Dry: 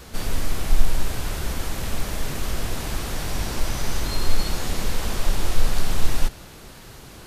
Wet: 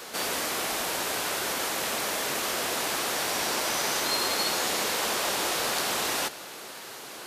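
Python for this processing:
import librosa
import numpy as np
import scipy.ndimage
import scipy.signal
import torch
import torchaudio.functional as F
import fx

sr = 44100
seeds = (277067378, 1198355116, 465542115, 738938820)

y = scipy.signal.sosfilt(scipy.signal.butter(2, 430.0, 'highpass', fs=sr, output='sos'), x)
y = F.gain(torch.from_numpy(y), 5.0).numpy()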